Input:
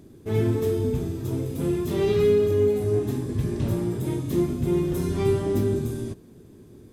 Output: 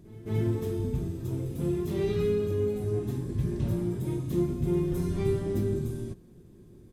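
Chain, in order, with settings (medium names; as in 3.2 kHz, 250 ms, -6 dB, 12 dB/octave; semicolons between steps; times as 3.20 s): bass shelf 130 Hz +10.5 dB; comb 5.6 ms, depth 31%; pre-echo 218 ms -19 dB; trim -8 dB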